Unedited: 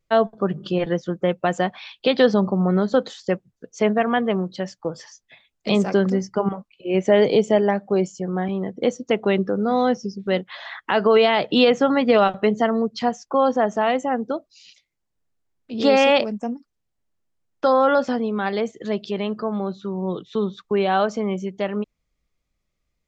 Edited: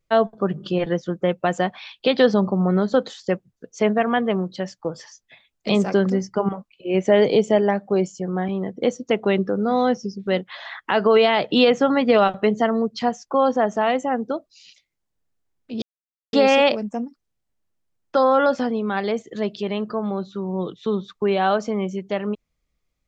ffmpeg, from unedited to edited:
-filter_complex "[0:a]asplit=2[a][b];[a]atrim=end=15.82,asetpts=PTS-STARTPTS,afade=t=out:st=15.816:d=0.004:c=hsin,apad=pad_dur=0.51[c];[b]atrim=start=15.82,asetpts=PTS-STARTPTS,afade=t=in:d=0.004:c=hsin[d];[c][d]concat=n=2:v=0:a=1"

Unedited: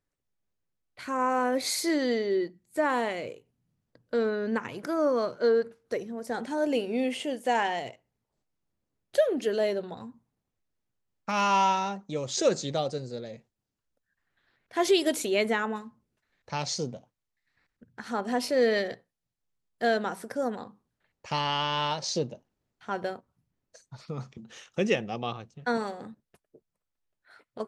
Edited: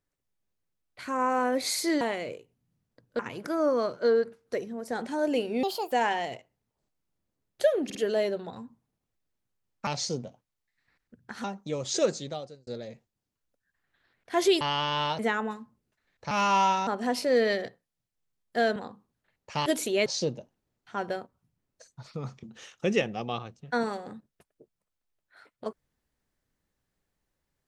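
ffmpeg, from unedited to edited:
-filter_complex "[0:a]asplit=17[a][b][c][d][e][f][g][h][i][j][k][l][m][n][o][p][q];[a]atrim=end=2.012[r];[b]atrim=start=2.978:end=4.162[s];[c]atrim=start=4.578:end=7.024[t];[d]atrim=start=7.02:end=7.46,asetpts=PTS-STARTPTS,asetrate=67032,aresample=44100[u];[e]atrim=start=7.456:end=9.442[v];[f]atrim=start=9.388:end=9.442[w];[g]atrim=start=9.388:end=11.312[x];[h]atrim=start=16.558:end=18.132[y];[i]atrim=start=11.868:end=13.1,asetpts=PTS-STARTPTS,afade=t=out:st=0.502:d=0.73[z];[j]atrim=start=13.1:end=15.042,asetpts=PTS-STARTPTS,afade=t=in:d=0.004:c=hsin[aa];[k]atrim=start=21.418:end=22.002[ab];[l]atrim=start=15.438:end=16.562[ac];[m]atrim=start=11.308:end=11.872[ad];[n]atrim=start=18.128:end=20.022[ae];[o]atrim=start=20.518:end=21.422[af];[p]atrim=start=15.038:end=15.442[ag];[q]atrim=start=21.998[ah];[r][s]acrossfade=d=0.004:c1=hsin:c2=hsin[ai];[ai][t]acrossfade=d=0.004:c1=hsin:c2=hsin[aj];[aj][u]acrossfade=d=0.004:c1=hsin:c2=hsin[ak];[ak][v]acrossfade=d=0.004:c1=hsin:c2=hsin[al];[al][w]acrossfade=d=0.004:c1=hsin:c2=hsin[am];[am][x]acrossfade=d=0.004:c1=hsin:c2=hsin[an];[an][y]acrossfade=d=0.004:c1=hsin:c2=hsin[ao];[z][aa]concat=n=2:v=0:a=1[ap];[ao][ap]acrossfade=d=0.004:c1=hsin:c2=hsin[aq];[aq][ab]acrossfade=d=0.004:c1=hsin:c2=hsin[ar];[ar][ac]acrossfade=d=0.004:c1=hsin:c2=hsin[as];[as][ad]acrossfade=d=0.004:c1=hsin:c2=hsin[at];[at][ae]acrossfade=d=0.004:c1=hsin:c2=hsin[au];[au][af]acrossfade=d=0.004:c1=hsin:c2=hsin[av];[av][ag]acrossfade=d=0.004:c1=hsin:c2=hsin[aw];[aw][ah]acrossfade=d=0.004:c1=hsin:c2=hsin"

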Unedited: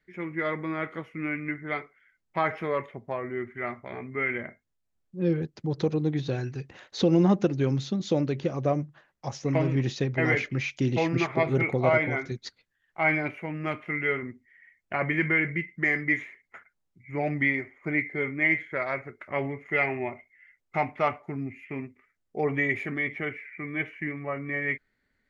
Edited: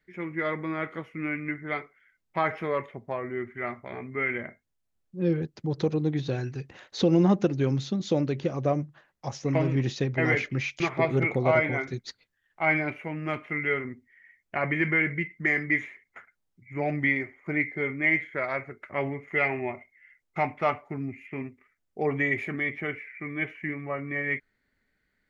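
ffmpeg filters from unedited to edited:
-filter_complex "[0:a]asplit=2[a][b];[a]atrim=end=10.802[c];[b]atrim=start=11.178[d];[c][d]acrossfade=d=0.004:c1=hsin:c2=hsin"

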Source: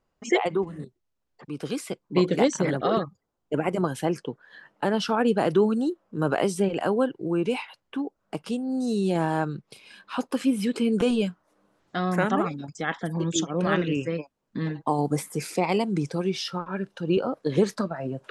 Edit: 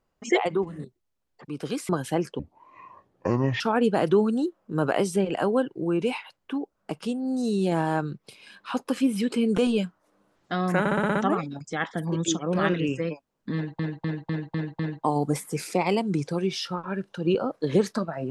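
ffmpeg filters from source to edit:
-filter_complex "[0:a]asplit=15[a][b][c][d][e][f][g][h][i][j][k][l][m][n][o];[a]atrim=end=1.892[p];[b]atrim=start=3.798:end=4.304[q];[c]atrim=start=4.3:end=5.04,asetpts=PTS-STARTPTS,asetrate=26901,aresample=44100,atrim=end_sample=53498,asetpts=PTS-STARTPTS[r];[d]atrim=start=5.036:end=12.292[s];[e]atrim=start=12.228:end=12.292[t];[f]atrim=start=12.228:end=12.292[u];[g]atrim=start=12.228:end=12.292[v];[h]atrim=start=12.228:end=12.292[w];[i]atrim=start=12.228:end=12.292[x];[j]atrim=start=12.228:end=14.872[y];[k]atrim=start=14.618:end=14.872[z];[l]atrim=start=14.618:end=14.872[aa];[m]atrim=start=14.618:end=14.872[ab];[n]atrim=start=14.618:end=14.872[ac];[o]atrim=start=14.618[ad];[p][q]acrossfade=d=0.004:c1=hsin:c2=hsin[ae];[ae][r]acrossfade=d=0.004:c1=hsin:c2=hsin[af];[af][s]acrossfade=d=0.004:c1=hsin:c2=hsin[ag];[ag][t]acrossfade=d=0.004:c1=hsin:c2=hsin[ah];[ah][u]acrossfade=d=0.004:c1=hsin:c2=hsin[ai];[ai][v]acrossfade=d=0.004:c1=hsin:c2=hsin[aj];[aj][w]acrossfade=d=0.004:c1=hsin:c2=hsin[ak];[ak][x]acrossfade=d=0.004:c1=hsin:c2=hsin[al];[al][y]acrossfade=d=0.004:c1=hsin:c2=hsin[am];[am][z]acrossfade=d=0.004:c1=hsin:c2=hsin[an];[an][aa]acrossfade=d=0.004:c1=hsin:c2=hsin[ao];[ao][ab]acrossfade=d=0.004:c1=hsin:c2=hsin[ap];[ap][ac]acrossfade=d=0.004:c1=hsin:c2=hsin[aq];[aq][ad]acrossfade=d=0.004:c1=hsin:c2=hsin"

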